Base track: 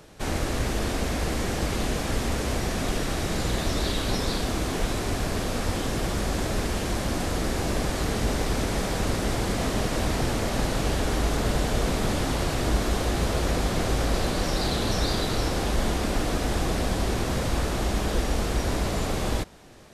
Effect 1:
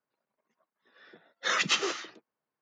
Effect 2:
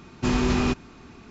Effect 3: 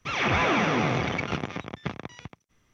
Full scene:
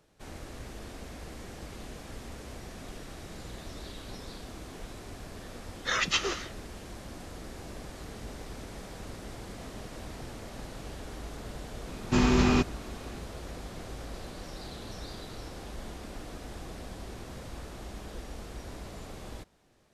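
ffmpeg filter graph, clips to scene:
-filter_complex "[0:a]volume=-16.5dB[a];[1:a]atrim=end=2.61,asetpts=PTS-STARTPTS,volume=-1dB,afade=t=in:d=0.004:c=hsin,afade=t=out:st=2.606:d=0.004:c=hsin,adelay=4420[b];[2:a]atrim=end=1.3,asetpts=PTS-STARTPTS,volume=-0.5dB,afade=t=in:d=0.004:c=hsin,afade=t=out:st=1.296:d=0.004:c=hsin,adelay=11890[c];[a][b][c]amix=inputs=3:normalize=0"

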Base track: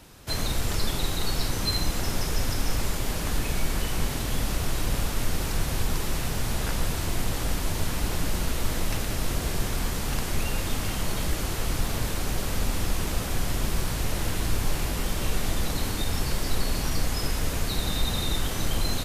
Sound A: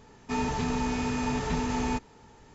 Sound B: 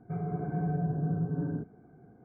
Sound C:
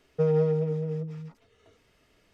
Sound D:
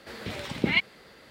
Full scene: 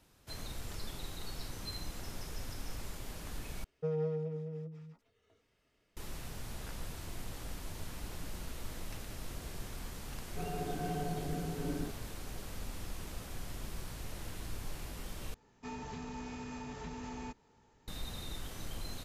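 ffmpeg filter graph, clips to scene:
-filter_complex "[0:a]volume=-16dB[a];[2:a]highpass=270[b];[1:a]alimiter=limit=-21dB:level=0:latency=1:release=172[c];[a]asplit=3[d][e][f];[d]atrim=end=3.644[g];[3:a]atrim=end=2.33,asetpts=PTS-STARTPTS,volume=-11dB[h];[e]atrim=start=5.966:end=15.344[i];[c]atrim=end=2.54,asetpts=PTS-STARTPTS,volume=-13dB[j];[f]atrim=start=17.876[k];[b]atrim=end=2.24,asetpts=PTS-STARTPTS,volume=-0.5dB,afade=t=in:d=0.004:c=hsin,afade=t=out:st=2.236:d=0.004:c=hsin,adelay=10270[l];[g][h]acrossfade=d=0.004:c1=hsin:c2=hsin[m];[m][i]acrossfade=d=0.004:c1=hsin:c2=hsin[n];[n][j]acrossfade=d=0.004:c1=hsin:c2=hsin[o];[o][k]acrossfade=d=0.004:c1=hsin:c2=hsin[p];[p][l]amix=inputs=2:normalize=0"

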